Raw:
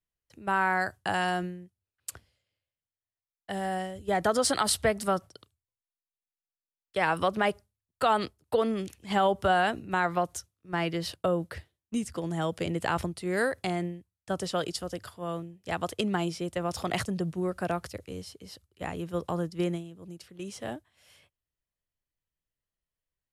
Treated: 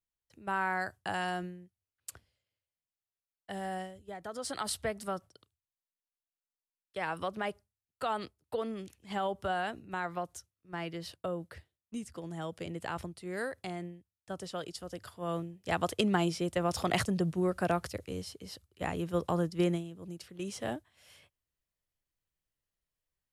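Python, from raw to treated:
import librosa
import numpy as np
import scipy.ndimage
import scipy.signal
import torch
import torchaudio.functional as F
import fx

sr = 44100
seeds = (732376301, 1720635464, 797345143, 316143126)

y = fx.gain(x, sr, db=fx.line((3.82, -6.0), (4.19, -18.5), (4.63, -9.0), (14.74, -9.0), (15.39, 0.5)))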